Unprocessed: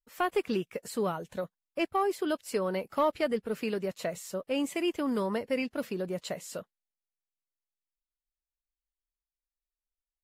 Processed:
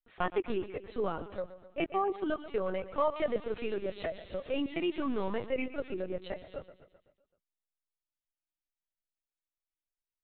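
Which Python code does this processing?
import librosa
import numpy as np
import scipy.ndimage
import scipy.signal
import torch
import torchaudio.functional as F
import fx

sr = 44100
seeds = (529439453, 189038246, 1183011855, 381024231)

y = fx.crossing_spikes(x, sr, level_db=-29.5, at=(3.17, 5.46))
y = fx.echo_feedback(y, sr, ms=128, feedback_pct=57, wet_db=-14.0)
y = fx.lpc_vocoder(y, sr, seeds[0], excitation='pitch_kept', order=16)
y = F.gain(torch.from_numpy(y), -2.5).numpy()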